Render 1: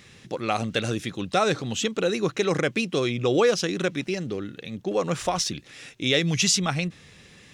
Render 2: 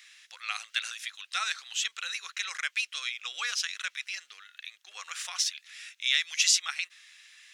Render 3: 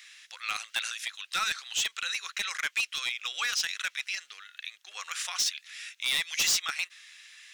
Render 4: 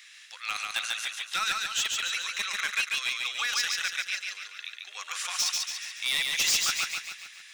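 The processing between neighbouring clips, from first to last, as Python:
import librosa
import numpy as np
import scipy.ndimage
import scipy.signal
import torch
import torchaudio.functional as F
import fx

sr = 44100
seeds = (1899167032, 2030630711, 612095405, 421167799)

y1 = scipy.signal.sosfilt(scipy.signal.butter(4, 1500.0, 'highpass', fs=sr, output='sos'), x)
y1 = y1 * librosa.db_to_amplitude(-1.0)
y2 = np.clip(y1, -10.0 ** (-25.5 / 20.0), 10.0 ** (-25.5 / 20.0))
y2 = y2 * librosa.db_to_amplitude(3.0)
y3 = fx.echo_feedback(y2, sr, ms=142, feedback_pct=50, wet_db=-3)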